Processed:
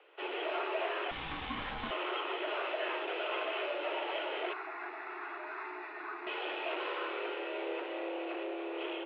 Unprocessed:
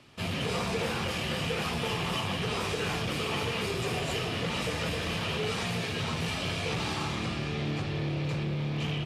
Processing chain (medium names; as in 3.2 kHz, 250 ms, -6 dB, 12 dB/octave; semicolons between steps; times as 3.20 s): mistuned SSB +190 Hz 180–2800 Hz; 1.11–1.91 s: ring modulator 410 Hz; 4.53–6.27 s: static phaser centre 1.3 kHz, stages 4; trim -3 dB